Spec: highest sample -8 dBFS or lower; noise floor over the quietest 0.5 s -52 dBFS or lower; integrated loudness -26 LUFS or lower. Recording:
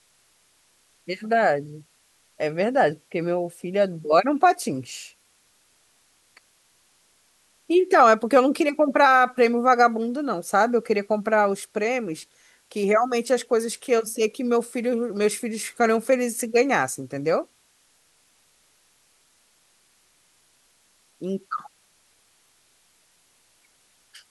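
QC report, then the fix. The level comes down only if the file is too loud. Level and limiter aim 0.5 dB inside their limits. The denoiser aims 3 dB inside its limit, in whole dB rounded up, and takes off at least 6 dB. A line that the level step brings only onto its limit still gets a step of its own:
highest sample -4.5 dBFS: fail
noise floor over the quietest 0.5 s -63 dBFS: OK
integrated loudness -22.0 LUFS: fail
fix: gain -4.5 dB

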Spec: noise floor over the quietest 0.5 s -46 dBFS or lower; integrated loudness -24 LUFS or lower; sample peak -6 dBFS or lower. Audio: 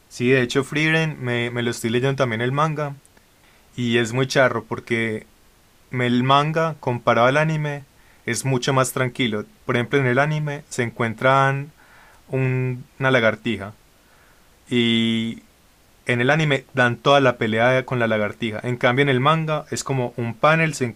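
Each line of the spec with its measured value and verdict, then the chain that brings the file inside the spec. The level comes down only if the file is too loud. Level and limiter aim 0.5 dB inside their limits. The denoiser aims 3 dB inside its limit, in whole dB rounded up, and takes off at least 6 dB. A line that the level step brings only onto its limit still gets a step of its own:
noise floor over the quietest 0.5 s -55 dBFS: OK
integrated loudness -20.5 LUFS: fail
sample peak -4.0 dBFS: fail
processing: gain -4 dB

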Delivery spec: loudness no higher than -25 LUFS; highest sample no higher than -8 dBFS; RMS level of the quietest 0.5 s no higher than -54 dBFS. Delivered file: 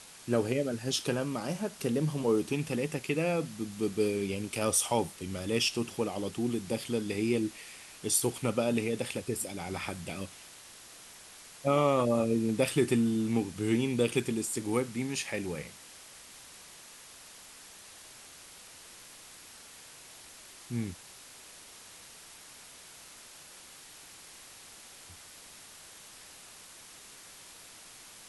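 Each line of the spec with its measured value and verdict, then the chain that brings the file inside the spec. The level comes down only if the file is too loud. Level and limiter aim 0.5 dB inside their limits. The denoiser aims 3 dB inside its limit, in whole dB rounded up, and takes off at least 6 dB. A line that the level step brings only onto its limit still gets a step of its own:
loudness -31.0 LUFS: OK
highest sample -13.0 dBFS: OK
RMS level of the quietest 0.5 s -51 dBFS: fail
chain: denoiser 6 dB, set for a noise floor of -51 dBFS

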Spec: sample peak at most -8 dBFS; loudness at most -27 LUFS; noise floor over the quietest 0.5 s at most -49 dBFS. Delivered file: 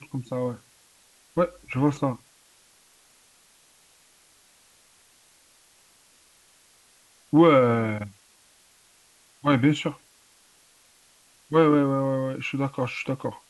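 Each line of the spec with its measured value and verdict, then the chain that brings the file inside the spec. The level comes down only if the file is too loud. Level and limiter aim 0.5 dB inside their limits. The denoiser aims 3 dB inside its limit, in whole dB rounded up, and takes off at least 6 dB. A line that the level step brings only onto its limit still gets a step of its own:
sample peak -6.0 dBFS: fail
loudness -24.0 LUFS: fail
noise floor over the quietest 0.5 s -59 dBFS: OK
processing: gain -3.5 dB

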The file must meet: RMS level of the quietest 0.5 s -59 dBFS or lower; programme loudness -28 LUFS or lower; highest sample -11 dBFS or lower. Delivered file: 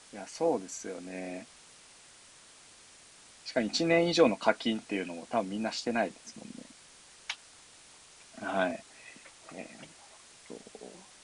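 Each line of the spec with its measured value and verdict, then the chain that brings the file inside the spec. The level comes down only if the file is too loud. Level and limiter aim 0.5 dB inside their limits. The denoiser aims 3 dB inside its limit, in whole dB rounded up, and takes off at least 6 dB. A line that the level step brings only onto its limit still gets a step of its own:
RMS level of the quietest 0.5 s -56 dBFS: fail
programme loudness -31.5 LUFS: OK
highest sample -8.5 dBFS: fail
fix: denoiser 6 dB, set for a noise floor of -56 dBFS; limiter -11.5 dBFS

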